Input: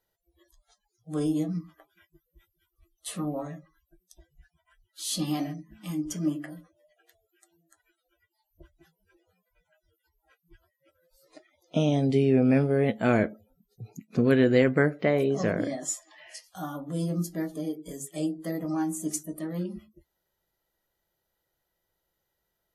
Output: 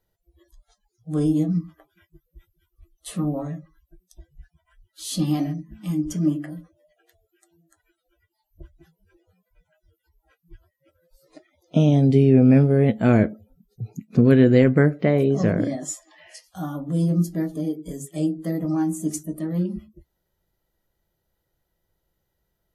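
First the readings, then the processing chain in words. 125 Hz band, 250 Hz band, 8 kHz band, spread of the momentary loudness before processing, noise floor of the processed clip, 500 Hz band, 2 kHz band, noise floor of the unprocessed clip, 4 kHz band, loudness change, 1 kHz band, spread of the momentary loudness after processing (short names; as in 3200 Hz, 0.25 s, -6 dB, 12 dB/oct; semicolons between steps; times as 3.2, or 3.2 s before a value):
+10.0 dB, +7.0 dB, 0.0 dB, 17 LU, -78 dBFS, +4.0 dB, +0.5 dB, -81 dBFS, 0.0 dB, +6.5 dB, +1.5 dB, 18 LU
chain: low shelf 310 Hz +12 dB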